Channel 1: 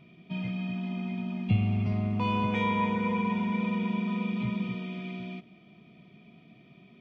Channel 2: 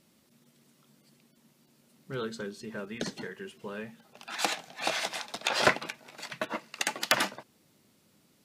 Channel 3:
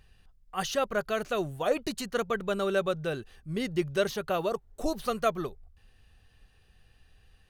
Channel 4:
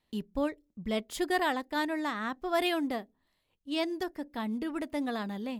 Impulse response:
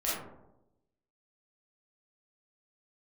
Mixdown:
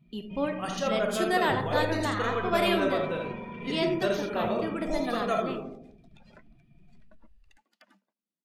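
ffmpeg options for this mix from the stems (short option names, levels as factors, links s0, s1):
-filter_complex "[0:a]asubboost=boost=7:cutoff=72,asoftclip=type=tanh:threshold=0.0251,volume=0.473,asplit=2[s0][s1];[s1]volume=0.422[s2];[1:a]lowshelf=f=140:t=q:w=3:g=-12,acompressor=threshold=0.00891:ratio=2,adelay=700,volume=0.112,asplit=2[s3][s4];[s4]volume=0.075[s5];[2:a]adelay=50,volume=0.473,asplit=3[s6][s7][s8];[s7]volume=0.501[s9];[s8]volume=0.708[s10];[3:a]lowshelf=f=190:g=-11.5,volume=1.06,asplit=3[s11][s12][s13];[s12]volume=0.316[s14];[s13]apad=whole_len=332733[s15];[s6][s15]sidechaingate=range=0.0224:threshold=0.00141:ratio=16:detection=peak[s16];[4:a]atrim=start_sample=2205[s17];[s2][s9][s14]amix=inputs=3:normalize=0[s18];[s18][s17]afir=irnorm=-1:irlink=0[s19];[s5][s10]amix=inputs=2:normalize=0,aecho=0:1:82:1[s20];[s0][s3][s16][s11][s19][s20]amix=inputs=6:normalize=0,afftdn=nr=15:nf=-50"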